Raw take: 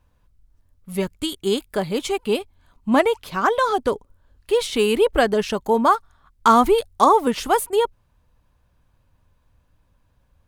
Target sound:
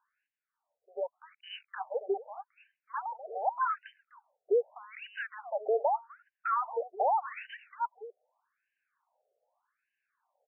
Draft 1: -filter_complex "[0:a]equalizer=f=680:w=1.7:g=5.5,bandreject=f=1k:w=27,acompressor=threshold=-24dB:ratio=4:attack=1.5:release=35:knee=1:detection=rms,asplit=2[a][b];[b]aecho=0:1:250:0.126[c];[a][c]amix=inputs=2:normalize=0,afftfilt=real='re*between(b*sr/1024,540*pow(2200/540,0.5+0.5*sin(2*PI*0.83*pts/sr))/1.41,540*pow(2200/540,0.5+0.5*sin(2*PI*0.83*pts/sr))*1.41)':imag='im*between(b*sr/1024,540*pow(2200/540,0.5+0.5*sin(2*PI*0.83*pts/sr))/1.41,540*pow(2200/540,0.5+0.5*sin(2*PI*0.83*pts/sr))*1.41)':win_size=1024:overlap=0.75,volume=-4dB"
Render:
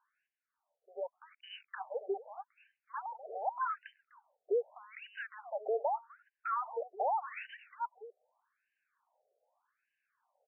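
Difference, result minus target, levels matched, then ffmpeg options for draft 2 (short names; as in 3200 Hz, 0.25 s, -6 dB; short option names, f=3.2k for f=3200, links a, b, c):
compressor: peak gain reduction +5 dB
-filter_complex "[0:a]equalizer=f=680:w=1.7:g=5.5,bandreject=f=1k:w=27,acompressor=threshold=-17.5dB:ratio=4:attack=1.5:release=35:knee=1:detection=rms,asplit=2[a][b];[b]aecho=0:1:250:0.126[c];[a][c]amix=inputs=2:normalize=0,afftfilt=real='re*between(b*sr/1024,540*pow(2200/540,0.5+0.5*sin(2*PI*0.83*pts/sr))/1.41,540*pow(2200/540,0.5+0.5*sin(2*PI*0.83*pts/sr))*1.41)':imag='im*between(b*sr/1024,540*pow(2200/540,0.5+0.5*sin(2*PI*0.83*pts/sr))/1.41,540*pow(2200/540,0.5+0.5*sin(2*PI*0.83*pts/sr))*1.41)':win_size=1024:overlap=0.75,volume=-4dB"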